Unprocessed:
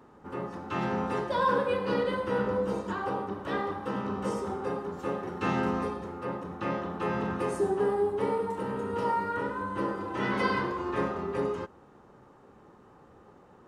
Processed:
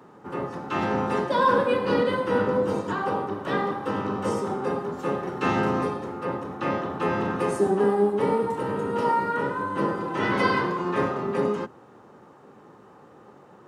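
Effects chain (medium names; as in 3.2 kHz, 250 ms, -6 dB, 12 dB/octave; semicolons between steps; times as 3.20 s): octave divider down 1 oct, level +3 dB; high-pass 220 Hz 12 dB/octave; trim +5.5 dB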